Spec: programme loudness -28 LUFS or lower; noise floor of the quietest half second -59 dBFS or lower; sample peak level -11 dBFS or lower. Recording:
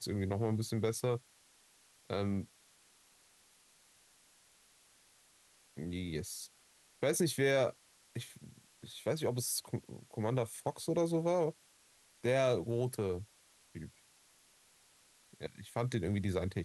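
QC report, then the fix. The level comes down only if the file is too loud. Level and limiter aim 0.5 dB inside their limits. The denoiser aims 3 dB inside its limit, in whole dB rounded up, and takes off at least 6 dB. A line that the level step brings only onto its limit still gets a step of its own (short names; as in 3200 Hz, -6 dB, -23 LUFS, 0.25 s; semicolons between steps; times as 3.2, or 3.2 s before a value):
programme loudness -36.0 LUFS: OK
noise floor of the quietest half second -67 dBFS: OK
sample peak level -18.5 dBFS: OK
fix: none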